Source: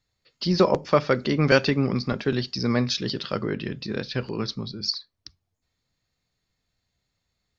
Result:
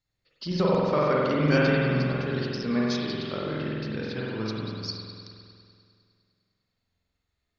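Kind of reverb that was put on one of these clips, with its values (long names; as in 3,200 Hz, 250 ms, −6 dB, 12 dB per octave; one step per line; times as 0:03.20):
spring reverb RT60 2.3 s, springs 46 ms, chirp 55 ms, DRR −5.5 dB
level −8.5 dB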